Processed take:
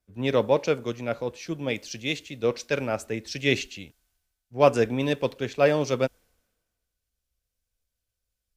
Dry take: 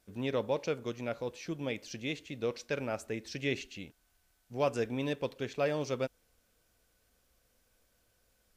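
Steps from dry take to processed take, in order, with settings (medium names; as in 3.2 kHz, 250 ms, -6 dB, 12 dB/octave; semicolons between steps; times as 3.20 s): three bands expanded up and down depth 70%; trim +8.5 dB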